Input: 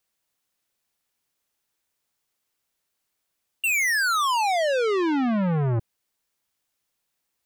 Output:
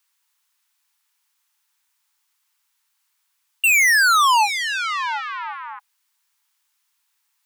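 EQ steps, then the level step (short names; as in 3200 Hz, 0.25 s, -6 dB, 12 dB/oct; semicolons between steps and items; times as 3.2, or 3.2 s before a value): brick-wall FIR high-pass 820 Hz; +7.5 dB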